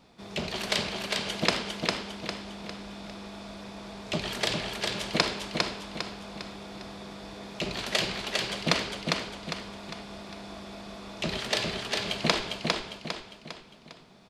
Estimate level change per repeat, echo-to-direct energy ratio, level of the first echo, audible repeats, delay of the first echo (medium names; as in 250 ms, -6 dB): -7.0 dB, -2.0 dB, -3.0 dB, 4, 403 ms